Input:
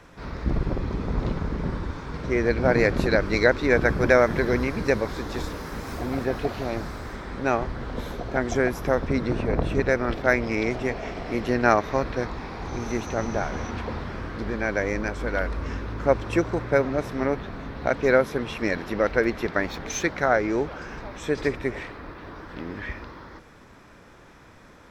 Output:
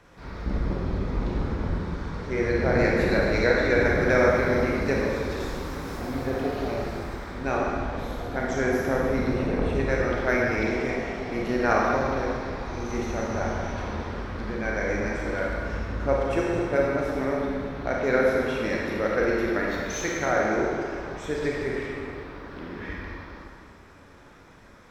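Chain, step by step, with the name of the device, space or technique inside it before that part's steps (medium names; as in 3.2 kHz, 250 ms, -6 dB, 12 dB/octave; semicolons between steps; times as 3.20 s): stairwell (reverberation RT60 2.1 s, pre-delay 29 ms, DRR -3.5 dB); trim -6 dB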